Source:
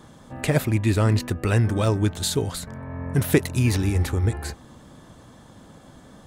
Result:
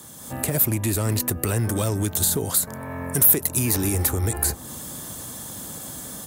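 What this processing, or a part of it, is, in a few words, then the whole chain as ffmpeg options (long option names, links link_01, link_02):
FM broadcast chain: -filter_complex "[0:a]asettb=1/sr,asplit=3[link_01][link_02][link_03];[link_01]atrim=end=2.364[link_04];[link_02]atrim=start=2.36:end=3.94,asetpts=PTS-STARTPTS,afade=type=in:duration=0.004:curve=qsin,afade=type=out:start_time=1.576:duration=0.004:curve=qsin,lowshelf=frequency=200:gain=-10[link_05];[link_03]atrim=start=3.936[link_06];[link_04][link_05]acrossfade=duration=0.004:curve1=hsin:curve2=qsin[link_07];[link_07][link_06]acrossfade=duration=0.004:curve1=qsin:curve2=hsin,highpass=52,dynaudnorm=framelen=160:gausssize=3:maxgain=8dB,acrossover=split=300|1400[link_08][link_09][link_10];[link_08]acompressor=threshold=-19dB:ratio=4[link_11];[link_09]acompressor=threshold=-22dB:ratio=4[link_12];[link_10]acompressor=threshold=-39dB:ratio=4[link_13];[link_11][link_12][link_13]amix=inputs=3:normalize=0,aemphasis=mode=production:type=50fm,alimiter=limit=-13.5dB:level=0:latency=1:release=68,asoftclip=type=hard:threshold=-15.5dB,lowpass=frequency=15000:width=0.5412,lowpass=frequency=15000:width=1.3066,aemphasis=mode=production:type=50fm,volume=-1dB"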